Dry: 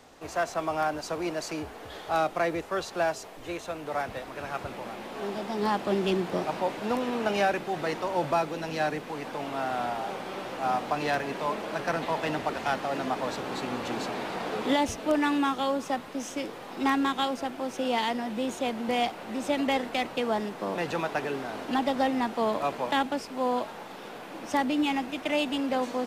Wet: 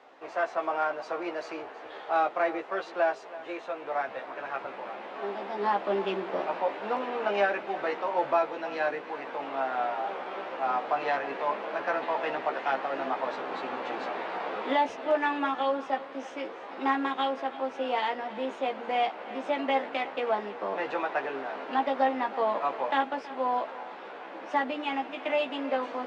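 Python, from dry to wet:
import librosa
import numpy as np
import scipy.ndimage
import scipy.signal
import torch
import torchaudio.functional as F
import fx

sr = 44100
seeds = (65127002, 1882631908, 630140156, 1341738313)

y = fx.bandpass_edges(x, sr, low_hz=430.0, high_hz=2400.0)
y = fx.doubler(y, sr, ms=15.0, db=-4.5)
y = y + 10.0 ** (-17.0 / 20.0) * np.pad(y, (int(324 * sr / 1000.0), 0))[:len(y)]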